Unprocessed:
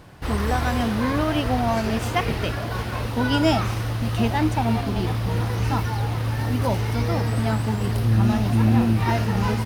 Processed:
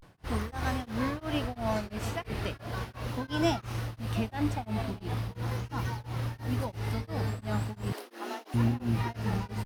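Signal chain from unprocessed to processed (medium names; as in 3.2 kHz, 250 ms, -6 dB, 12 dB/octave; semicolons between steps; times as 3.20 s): 7.90–8.54 s: steep high-pass 290 Hz 48 dB/octave; vibrato 0.38 Hz 89 cents; tremolo of two beating tones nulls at 2.9 Hz; trim -7 dB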